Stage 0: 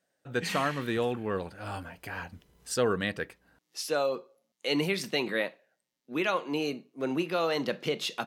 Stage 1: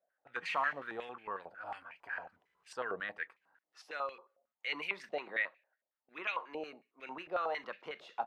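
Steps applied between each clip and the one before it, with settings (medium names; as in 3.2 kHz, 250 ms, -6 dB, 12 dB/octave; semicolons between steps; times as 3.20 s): step-sequenced band-pass 11 Hz 670–2400 Hz; trim +2.5 dB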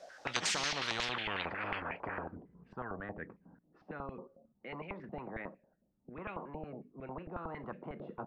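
low-pass sweep 5.5 kHz -> 200 Hz, 1.01–2.52 s; spectrum-flattening compressor 10:1; trim +5.5 dB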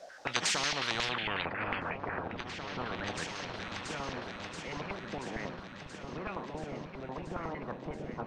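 delay with an opening low-pass 680 ms, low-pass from 200 Hz, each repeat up 2 oct, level -3 dB; trim +3 dB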